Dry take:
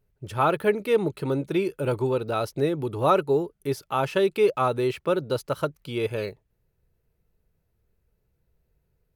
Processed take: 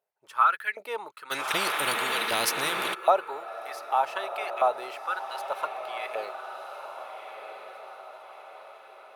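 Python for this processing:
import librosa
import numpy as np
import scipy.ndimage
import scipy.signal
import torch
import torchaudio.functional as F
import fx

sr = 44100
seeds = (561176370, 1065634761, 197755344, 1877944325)

y = fx.filter_lfo_highpass(x, sr, shape='saw_up', hz=1.3, low_hz=650.0, high_hz=2100.0, q=4.2)
y = fx.echo_diffused(y, sr, ms=1356, feedback_pct=50, wet_db=-8.5)
y = fx.spectral_comp(y, sr, ratio=4.0, at=(1.3, 2.93), fade=0.02)
y = F.gain(torch.from_numpy(y), -6.5).numpy()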